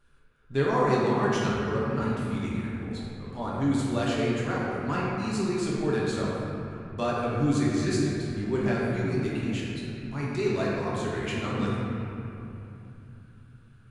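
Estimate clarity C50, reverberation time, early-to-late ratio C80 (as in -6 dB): -2.5 dB, 2.9 s, -1.0 dB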